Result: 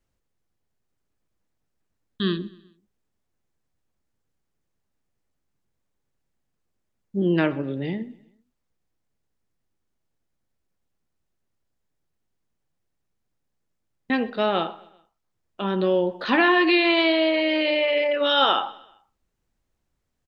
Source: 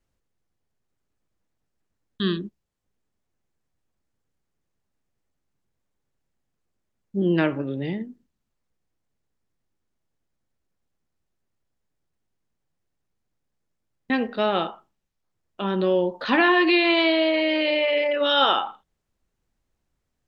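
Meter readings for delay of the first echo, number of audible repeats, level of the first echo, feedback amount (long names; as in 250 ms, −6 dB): 128 ms, 3, −22.0 dB, 48%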